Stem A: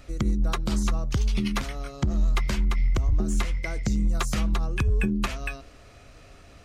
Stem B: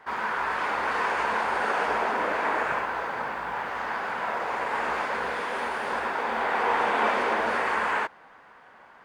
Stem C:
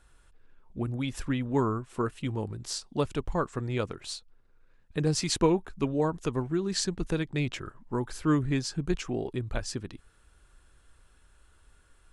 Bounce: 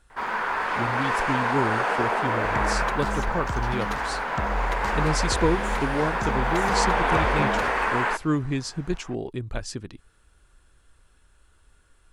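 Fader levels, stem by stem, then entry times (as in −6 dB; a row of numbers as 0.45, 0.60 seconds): −6.0, +1.5, +1.0 decibels; 2.35, 0.10, 0.00 seconds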